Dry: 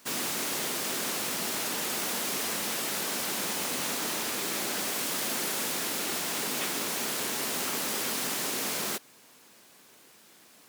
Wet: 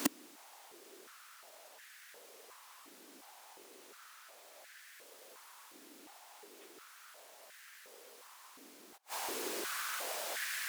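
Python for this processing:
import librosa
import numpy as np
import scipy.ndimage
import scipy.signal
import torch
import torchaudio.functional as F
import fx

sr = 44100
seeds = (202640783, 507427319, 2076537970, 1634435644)

y = fx.gate_flip(x, sr, shuts_db=-29.0, range_db=-42)
y = fx.filter_held_highpass(y, sr, hz=2.8, low_hz=290.0, high_hz=1700.0)
y = y * 10.0 ** (15.0 / 20.0)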